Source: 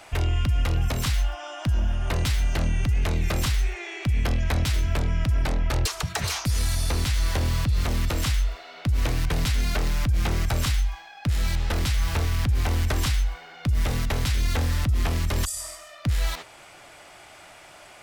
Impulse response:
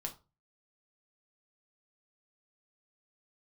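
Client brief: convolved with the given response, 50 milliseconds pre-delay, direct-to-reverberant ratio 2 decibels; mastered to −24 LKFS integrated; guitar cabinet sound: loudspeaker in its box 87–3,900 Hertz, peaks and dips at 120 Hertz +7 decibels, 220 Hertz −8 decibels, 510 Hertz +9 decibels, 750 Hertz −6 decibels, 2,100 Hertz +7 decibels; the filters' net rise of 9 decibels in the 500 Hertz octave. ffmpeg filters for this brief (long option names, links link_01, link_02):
-filter_complex "[0:a]equalizer=frequency=500:width_type=o:gain=6,asplit=2[link_01][link_02];[1:a]atrim=start_sample=2205,adelay=50[link_03];[link_02][link_03]afir=irnorm=-1:irlink=0,volume=-1dB[link_04];[link_01][link_04]amix=inputs=2:normalize=0,highpass=87,equalizer=frequency=120:width_type=q:width=4:gain=7,equalizer=frequency=220:width_type=q:width=4:gain=-8,equalizer=frequency=510:width_type=q:width=4:gain=9,equalizer=frequency=750:width_type=q:width=4:gain=-6,equalizer=frequency=2100:width_type=q:width=4:gain=7,lowpass=frequency=3900:width=0.5412,lowpass=frequency=3900:width=1.3066"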